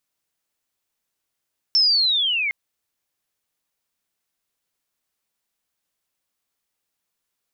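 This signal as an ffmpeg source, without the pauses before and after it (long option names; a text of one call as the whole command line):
ffmpeg -f lavfi -i "aevalsrc='pow(10,(-13-7.5*t/0.76)/20)*sin(2*PI*(5400*t-3300*t*t/(2*0.76)))':duration=0.76:sample_rate=44100" out.wav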